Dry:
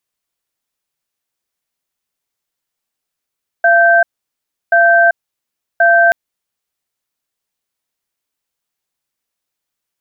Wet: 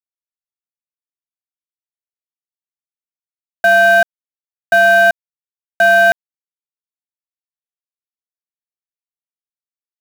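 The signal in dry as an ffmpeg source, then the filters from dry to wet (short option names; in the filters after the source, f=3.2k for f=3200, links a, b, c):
-f lavfi -i "aevalsrc='0.355*(sin(2*PI*683*t)+sin(2*PI*1560*t))*clip(min(mod(t,1.08),0.39-mod(t,1.08))/0.005,0,1)':d=2.48:s=44100"
-af "acontrast=45,alimiter=limit=-4.5dB:level=0:latency=1,aeval=exprs='val(0)*gte(abs(val(0)),0.0891)':c=same"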